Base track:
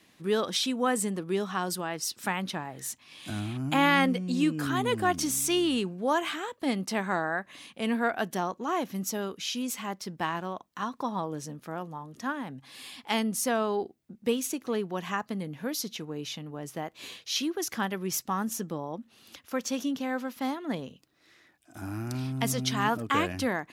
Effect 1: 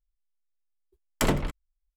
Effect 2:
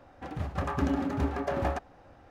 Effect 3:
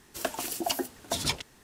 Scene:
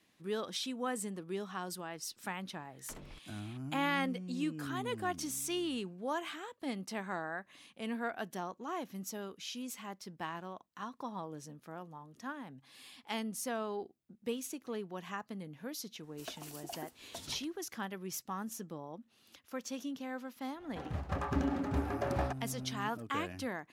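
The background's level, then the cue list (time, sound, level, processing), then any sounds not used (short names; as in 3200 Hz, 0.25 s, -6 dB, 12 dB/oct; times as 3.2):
base track -10 dB
1.68 add 1 -14 dB + compressor 4:1, threshold -34 dBFS
16.03 add 3 -15.5 dB
20.54 add 2 -4.5 dB, fades 0.10 s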